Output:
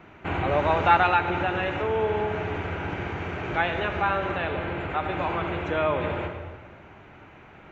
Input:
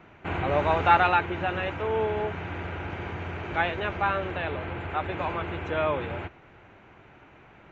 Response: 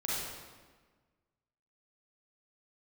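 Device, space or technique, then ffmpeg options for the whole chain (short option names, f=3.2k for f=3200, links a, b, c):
ducked reverb: -filter_complex "[0:a]asplit=3[a][b][c];[1:a]atrim=start_sample=2205[d];[b][d]afir=irnorm=-1:irlink=0[e];[c]apad=whole_len=340130[f];[e][f]sidechaincompress=threshold=-28dB:ratio=8:attack=5.8:release=144,volume=-7dB[g];[a][g]amix=inputs=2:normalize=0"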